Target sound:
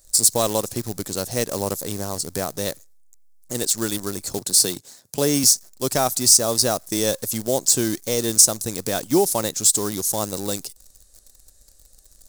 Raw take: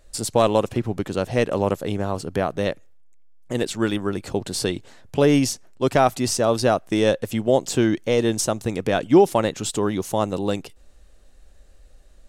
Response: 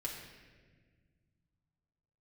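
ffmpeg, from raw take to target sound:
-filter_complex "[0:a]asettb=1/sr,asplit=3[link_01][link_02][link_03];[link_01]atrim=end=4.384[link_04];[link_02]atrim=start=4.38:end=5.44,asetpts=PTS-STARTPTS,afade=type=in:duration=0.004:curve=qsin,afade=type=out:start_time=1.056:duration=0.004:curve=qsin,highpass=frequency=110:width=0.5412,highpass=frequency=110:width=1.3066[link_05];[link_03]atrim=start=5.436[link_06];[link_04][link_05]acrossfade=duration=0.004:curve1=hsin:curve2=qsin[link_07];[link_07][link_06]acrossfade=duration=0.004:curve1=qsin:curve2=hsin,asplit=2[link_08][link_09];[link_09]acrusher=bits=5:dc=4:mix=0:aa=0.000001,volume=-7.5dB[link_10];[link_08][link_10]amix=inputs=2:normalize=0,aexciter=amount=6.4:drive=7:freq=4200,volume=-7.5dB"

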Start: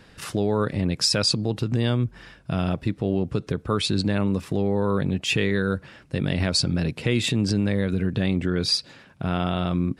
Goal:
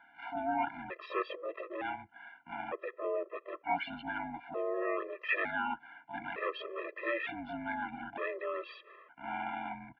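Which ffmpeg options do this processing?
ffmpeg -i in.wav -filter_complex "[0:a]asplit=3[link_01][link_02][link_03];[link_02]asetrate=33038,aresample=44100,atempo=1.33484,volume=-4dB[link_04];[link_03]asetrate=88200,aresample=44100,atempo=0.5,volume=-5dB[link_05];[link_01][link_04][link_05]amix=inputs=3:normalize=0,highpass=frequency=600:width_type=q:width=0.5412,highpass=frequency=600:width_type=q:width=1.307,lowpass=frequency=2500:width_type=q:width=0.5176,lowpass=frequency=2500:width_type=q:width=0.7071,lowpass=frequency=2500:width_type=q:width=1.932,afreqshift=-140,afftfilt=real='re*gt(sin(2*PI*0.55*pts/sr)*(1-2*mod(floor(b*sr/1024/340),2)),0)':imag='im*gt(sin(2*PI*0.55*pts/sr)*(1-2*mod(floor(b*sr/1024/340),2)),0)':win_size=1024:overlap=0.75,volume=-2.5dB" out.wav

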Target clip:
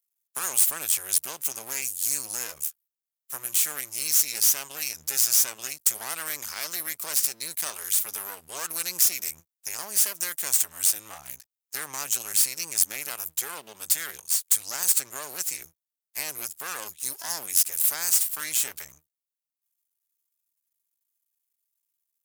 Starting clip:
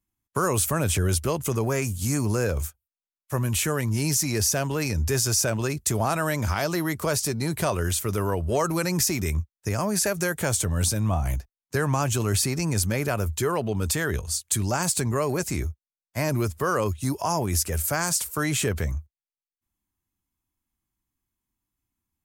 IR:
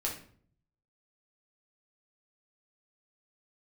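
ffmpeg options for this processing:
-af "aeval=exprs='max(val(0),0)':channel_layout=same,aderivative,volume=8dB"

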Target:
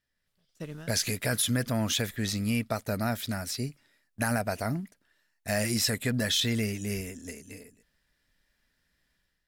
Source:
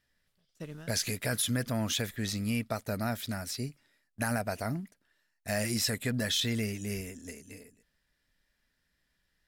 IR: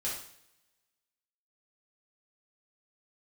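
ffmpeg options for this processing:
-af "dynaudnorm=framelen=140:gausssize=5:maxgain=9.5dB,volume=-6.5dB"

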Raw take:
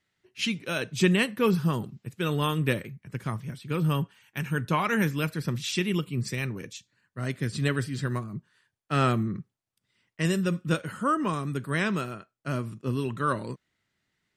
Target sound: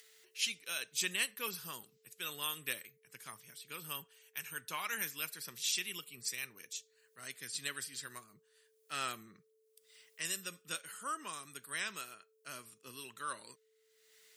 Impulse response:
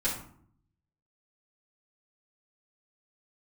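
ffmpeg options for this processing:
-af "acompressor=mode=upward:threshold=-41dB:ratio=2.5,aeval=exprs='val(0)+0.00355*sin(2*PI*440*n/s)':channel_layout=same,aderivative,volume=2dB"

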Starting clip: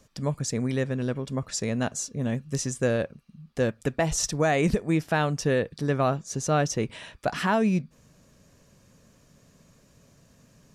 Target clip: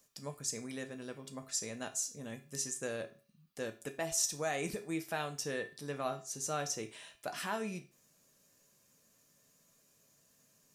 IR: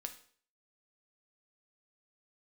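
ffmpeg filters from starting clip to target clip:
-filter_complex "[0:a]aemphasis=mode=production:type=bsi[link_01];[1:a]atrim=start_sample=2205,asetrate=61740,aresample=44100[link_02];[link_01][link_02]afir=irnorm=-1:irlink=0,volume=-6dB"

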